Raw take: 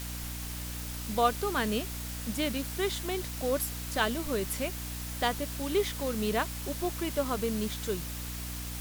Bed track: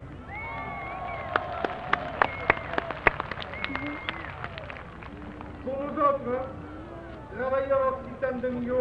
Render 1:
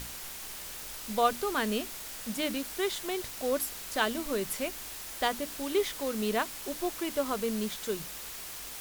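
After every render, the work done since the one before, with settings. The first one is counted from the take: hum notches 60/120/180/240/300 Hz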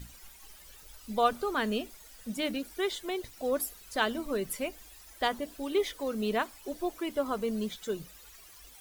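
noise reduction 15 dB, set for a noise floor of -42 dBFS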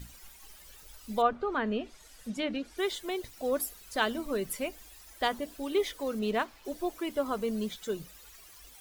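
1.21–2.78 s: low-pass that closes with the level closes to 1.9 kHz, closed at -25.5 dBFS; 6.19–6.65 s: median filter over 5 samples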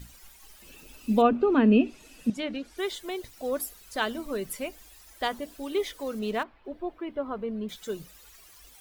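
0.62–2.30 s: small resonant body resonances 260/2600 Hz, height 17 dB, ringing for 20 ms; 6.43–7.69 s: distance through air 460 m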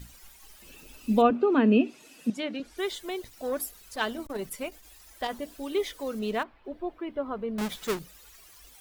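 1.30–2.60 s: high-pass 180 Hz; 3.19–5.39 s: transformer saturation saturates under 940 Hz; 7.58–7.99 s: square wave that keeps the level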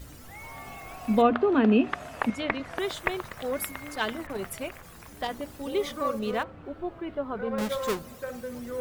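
add bed track -7.5 dB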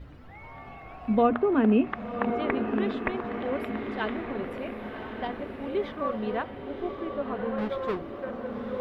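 distance through air 390 m; echo that smears into a reverb 1088 ms, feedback 52%, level -6.5 dB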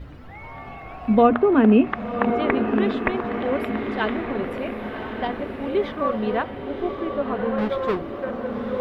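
trim +6.5 dB

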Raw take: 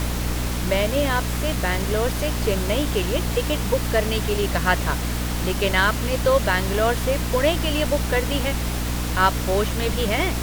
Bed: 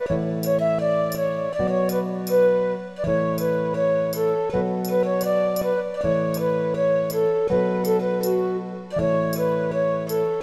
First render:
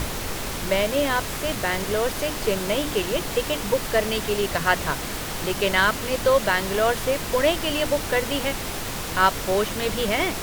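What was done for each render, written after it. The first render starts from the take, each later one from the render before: hum notches 60/120/180/240/300 Hz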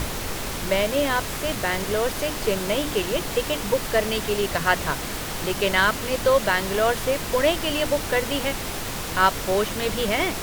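no audible change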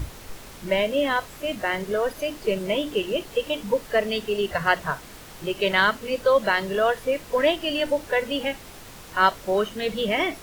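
noise print and reduce 13 dB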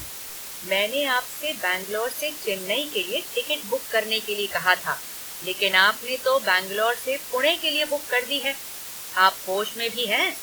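tilt EQ +3.5 dB/octave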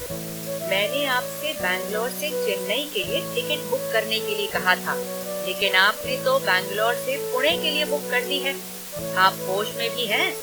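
add bed -9.5 dB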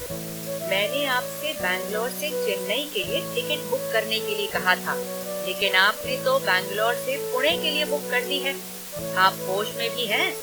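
trim -1 dB

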